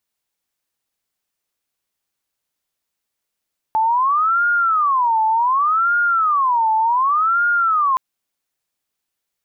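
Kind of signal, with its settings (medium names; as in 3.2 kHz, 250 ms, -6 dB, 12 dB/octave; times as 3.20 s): siren wail 876–1420 Hz 0.67 per s sine -13.5 dBFS 4.22 s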